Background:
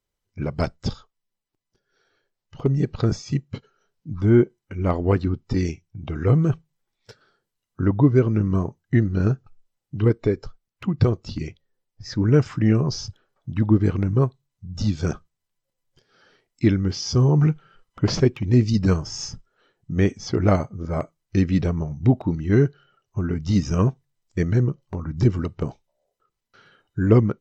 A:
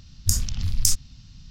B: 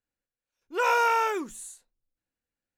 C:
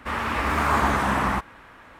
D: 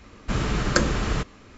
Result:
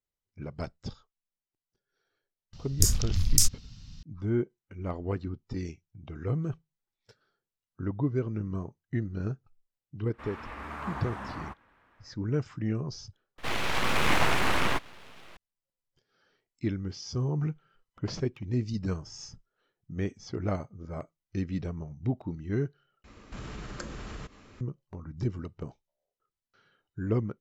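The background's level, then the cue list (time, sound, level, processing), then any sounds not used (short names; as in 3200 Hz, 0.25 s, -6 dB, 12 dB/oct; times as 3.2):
background -12.5 dB
2.53 add A -1 dB
10.13 add C -16.5 dB + high shelf 5800 Hz -10.5 dB
13.38 replace with C -0.5 dB + full-wave rectifier
23.04 replace with D -5 dB + compressor 2.5:1, threshold -37 dBFS
not used: B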